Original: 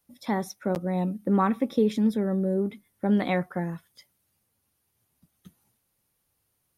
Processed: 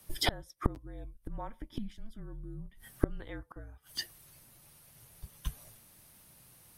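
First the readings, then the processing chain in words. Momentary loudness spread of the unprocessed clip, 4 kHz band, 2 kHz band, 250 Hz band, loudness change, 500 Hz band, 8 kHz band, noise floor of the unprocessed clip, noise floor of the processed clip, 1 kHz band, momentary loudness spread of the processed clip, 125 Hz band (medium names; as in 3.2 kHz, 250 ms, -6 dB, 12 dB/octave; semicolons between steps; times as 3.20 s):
9 LU, +6.0 dB, -6.5 dB, -17.0 dB, -13.5 dB, -15.5 dB, no reading, -75 dBFS, -62 dBFS, -12.5 dB, 20 LU, -9.5 dB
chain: frequency shift -230 Hz; inverted gate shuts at -29 dBFS, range -33 dB; trim +16 dB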